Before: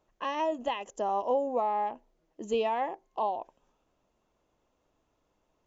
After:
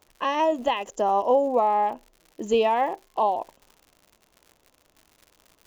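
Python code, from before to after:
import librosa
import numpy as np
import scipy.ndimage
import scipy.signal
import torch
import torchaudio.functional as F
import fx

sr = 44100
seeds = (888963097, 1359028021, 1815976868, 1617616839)

y = fx.dmg_crackle(x, sr, seeds[0], per_s=120.0, level_db=-47.0)
y = y * 10.0 ** (7.5 / 20.0)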